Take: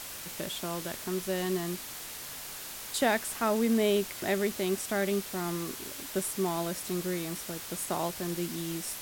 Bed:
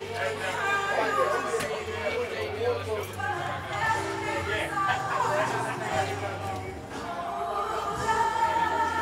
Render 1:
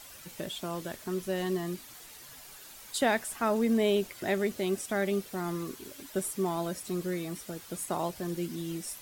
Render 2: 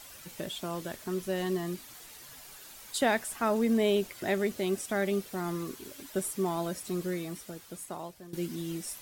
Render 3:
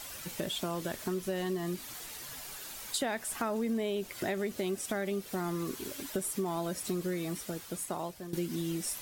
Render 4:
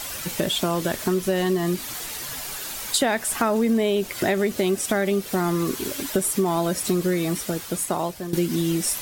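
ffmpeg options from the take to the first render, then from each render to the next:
ffmpeg -i in.wav -af "afftdn=noise_reduction=10:noise_floor=-42" out.wav
ffmpeg -i in.wav -filter_complex "[0:a]asplit=2[link_01][link_02];[link_01]atrim=end=8.33,asetpts=PTS-STARTPTS,afade=type=out:start_time=7.07:duration=1.26:silence=0.16788[link_03];[link_02]atrim=start=8.33,asetpts=PTS-STARTPTS,afade=type=in:duration=0.004:curve=hsin:silence=0.16788[link_04];[link_03][link_04]concat=n=2:v=0:a=1" out.wav
ffmpeg -i in.wav -filter_complex "[0:a]asplit=2[link_01][link_02];[link_02]alimiter=limit=-23dB:level=0:latency=1,volume=-2dB[link_03];[link_01][link_03]amix=inputs=2:normalize=0,acompressor=threshold=-31dB:ratio=4" out.wav
ffmpeg -i in.wav -af "volume=11.5dB" out.wav

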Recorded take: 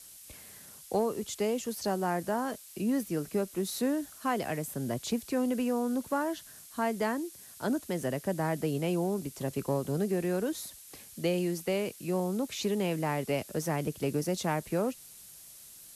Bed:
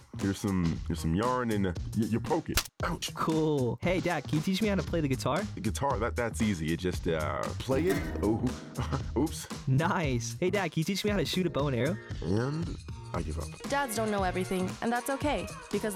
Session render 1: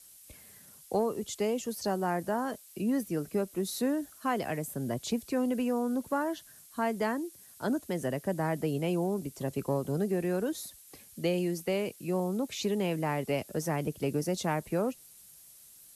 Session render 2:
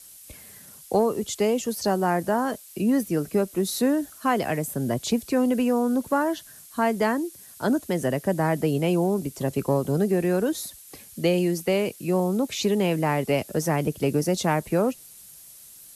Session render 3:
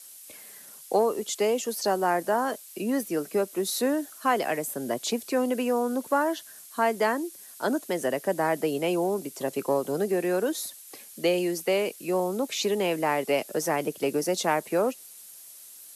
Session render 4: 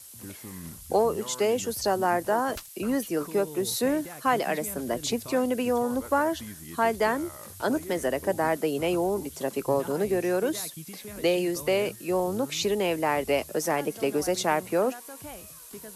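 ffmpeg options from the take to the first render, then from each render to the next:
ffmpeg -i in.wav -af "afftdn=noise_reduction=6:noise_floor=-51" out.wav
ffmpeg -i in.wav -af "volume=7.5dB" out.wav
ffmpeg -i in.wav -af "highpass=340" out.wav
ffmpeg -i in.wav -i bed.wav -filter_complex "[1:a]volume=-13dB[link_01];[0:a][link_01]amix=inputs=2:normalize=0" out.wav

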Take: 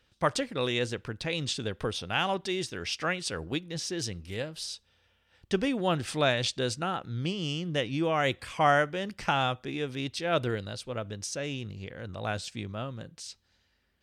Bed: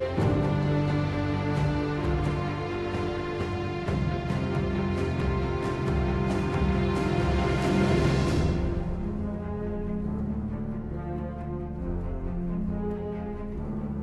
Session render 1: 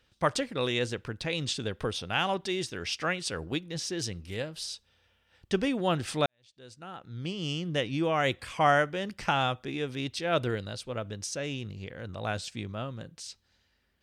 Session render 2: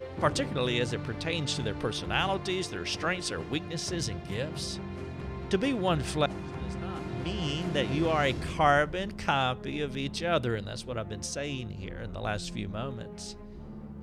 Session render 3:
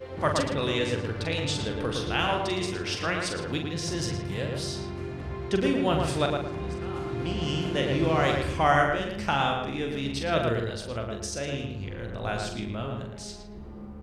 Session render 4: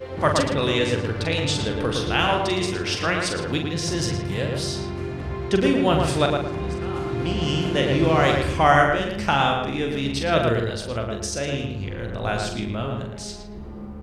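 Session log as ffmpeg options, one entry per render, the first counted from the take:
ffmpeg -i in.wav -filter_complex "[0:a]asplit=2[link_01][link_02];[link_01]atrim=end=6.26,asetpts=PTS-STARTPTS,afade=type=out:start_time=6.256:duration=0.004:curve=hsin[link_03];[link_02]atrim=start=6.26,asetpts=PTS-STARTPTS,afade=type=in:duration=1.25:curve=qua[link_04];[link_03][link_04]concat=n=2:v=0:a=1" out.wav
ffmpeg -i in.wav -i bed.wav -filter_complex "[1:a]volume=-11dB[link_01];[0:a][link_01]amix=inputs=2:normalize=0" out.wav
ffmpeg -i in.wav -filter_complex "[0:a]asplit=2[link_01][link_02];[link_02]adelay=43,volume=-6dB[link_03];[link_01][link_03]amix=inputs=2:normalize=0,asplit=2[link_04][link_05];[link_05]adelay=112,lowpass=frequency=2400:poles=1,volume=-3dB,asplit=2[link_06][link_07];[link_07]adelay=112,lowpass=frequency=2400:poles=1,volume=0.34,asplit=2[link_08][link_09];[link_09]adelay=112,lowpass=frequency=2400:poles=1,volume=0.34,asplit=2[link_10][link_11];[link_11]adelay=112,lowpass=frequency=2400:poles=1,volume=0.34[link_12];[link_06][link_08][link_10][link_12]amix=inputs=4:normalize=0[link_13];[link_04][link_13]amix=inputs=2:normalize=0" out.wav
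ffmpeg -i in.wav -af "volume=5.5dB" out.wav

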